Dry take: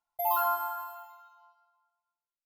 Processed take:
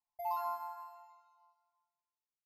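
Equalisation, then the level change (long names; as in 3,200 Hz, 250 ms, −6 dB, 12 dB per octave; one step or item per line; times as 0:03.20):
low-pass filter 11,000 Hz 24 dB per octave
phaser with its sweep stopped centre 2,200 Hz, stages 8
−7.0 dB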